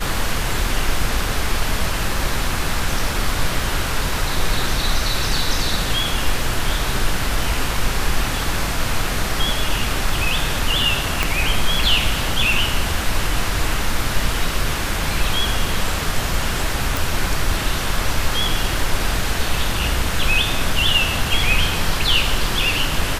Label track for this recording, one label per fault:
11.230000	11.230000	pop
16.970000	16.970000	pop

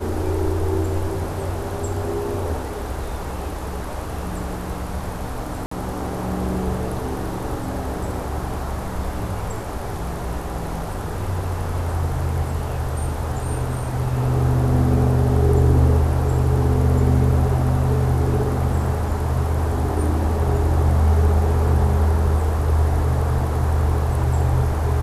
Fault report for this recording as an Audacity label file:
5.660000	5.710000	dropout 54 ms

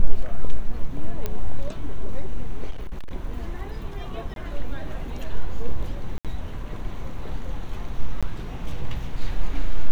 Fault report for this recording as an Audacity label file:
1.260000	1.260000	pop -13 dBFS
2.700000	3.120000	clipped -25.5 dBFS
4.340000	4.360000	dropout 22 ms
6.180000	6.250000	dropout 67 ms
8.210000	8.230000	dropout 16 ms

